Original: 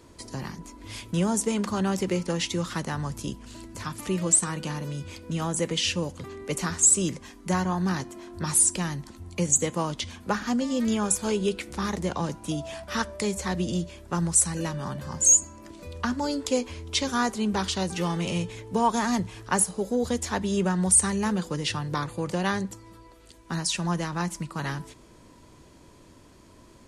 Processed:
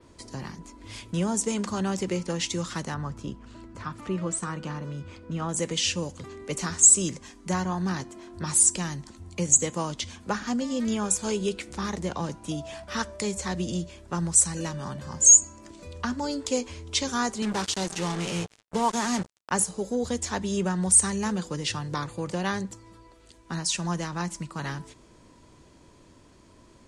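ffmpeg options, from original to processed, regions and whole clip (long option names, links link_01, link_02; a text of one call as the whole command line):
ffmpeg -i in.wav -filter_complex "[0:a]asettb=1/sr,asplit=3[link_01][link_02][link_03];[link_01]atrim=end=2.944[link_04];[link_02]atrim=start=2.94:end=5.49,asetpts=PTS-STARTPTS,afade=type=in:duration=0.004:curve=qsin,afade=type=out:start_time=2.546:duration=0.004:curve=qsin,lowpass=frequency=1900:poles=1,equalizer=frequency=1300:width=2.9:gain=5.5[link_05];[link_03]atrim=start=5.486[link_06];[link_04][link_05]acrossfade=duration=0.004:curve1=hsin:curve2=qsin[link_07];[link_07][link_06]acrossfade=duration=0.004:curve1=qsin:curve2=hsin,asettb=1/sr,asplit=3[link_08][link_09][link_10];[link_08]atrim=end=17.424[link_11];[link_09]atrim=start=17.42:end=19.51,asetpts=PTS-STARTPTS,afade=type=in:duration=0.004:curve=qsin,afade=type=out:start_time=2.086:duration=0.004:curve=qsin,highpass=120,acrusher=bits=4:mix=0:aa=0.5[link_12];[link_10]atrim=start=19.506[link_13];[link_11][link_12]acrossfade=duration=0.004:curve1=hsin:curve2=qsin[link_14];[link_14][link_13]acrossfade=duration=0.004:curve1=qsin:curve2=hsin,lowpass=frequency=9800:width=0.5412,lowpass=frequency=9800:width=1.3066,adynamicequalizer=threshold=0.01:dfrequency=7100:dqfactor=1.1:tfrequency=7100:tqfactor=1.1:attack=5:release=100:ratio=0.375:range=3:mode=boostabove:tftype=bell,volume=-2dB" out.wav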